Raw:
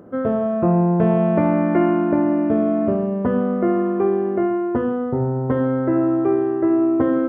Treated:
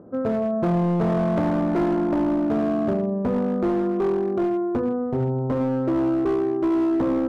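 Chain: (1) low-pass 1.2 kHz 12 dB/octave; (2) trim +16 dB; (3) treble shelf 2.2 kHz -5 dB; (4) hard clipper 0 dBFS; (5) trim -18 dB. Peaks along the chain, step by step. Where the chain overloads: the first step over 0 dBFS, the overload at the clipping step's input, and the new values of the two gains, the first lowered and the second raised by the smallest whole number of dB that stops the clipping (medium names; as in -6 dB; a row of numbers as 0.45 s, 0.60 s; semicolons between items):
-6.5 dBFS, +9.5 dBFS, +9.5 dBFS, 0.0 dBFS, -18.0 dBFS; step 2, 9.5 dB; step 2 +6 dB, step 5 -8 dB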